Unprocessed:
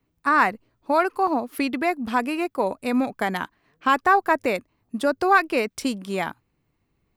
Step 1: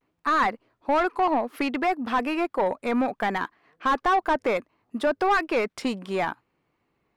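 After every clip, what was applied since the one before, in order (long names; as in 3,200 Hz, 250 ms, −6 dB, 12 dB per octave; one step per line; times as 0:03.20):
mid-hump overdrive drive 22 dB, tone 1,400 Hz, clips at −4 dBFS
pitch vibrato 0.64 Hz 62 cents
level −8 dB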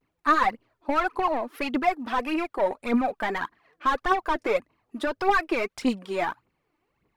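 phase shifter 1.7 Hz, delay 3.5 ms, feedback 62%
level −3 dB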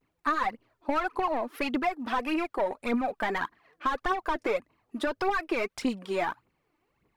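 downward compressor, threshold −24 dBFS, peak gain reduction 8.5 dB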